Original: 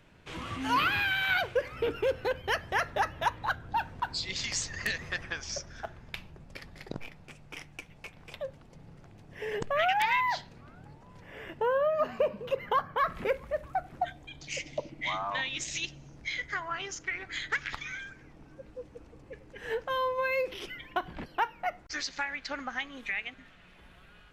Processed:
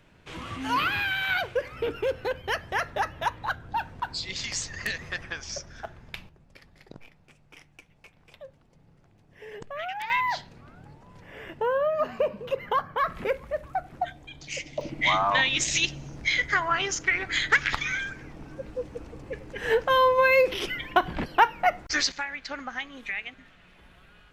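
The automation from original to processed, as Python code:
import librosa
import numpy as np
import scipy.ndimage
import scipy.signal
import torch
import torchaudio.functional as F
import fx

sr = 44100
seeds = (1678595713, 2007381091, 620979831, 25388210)

y = fx.gain(x, sr, db=fx.steps((0.0, 1.0), (6.29, -7.5), (10.1, 2.0), (14.81, 10.0), (22.12, 1.0)))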